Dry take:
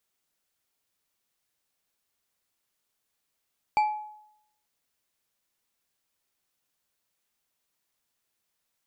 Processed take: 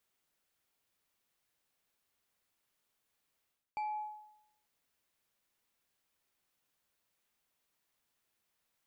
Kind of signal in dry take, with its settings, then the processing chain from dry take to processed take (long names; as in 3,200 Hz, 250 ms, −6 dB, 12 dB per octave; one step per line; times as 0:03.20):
struck glass bar, lowest mode 849 Hz, decay 0.77 s, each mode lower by 10.5 dB, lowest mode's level −17.5 dB
bass and treble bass 0 dB, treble −7 dB
reversed playback
downward compressor 6 to 1, threshold −38 dBFS
reversed playback
high-shelf EQ 6,200 Hz +5 dB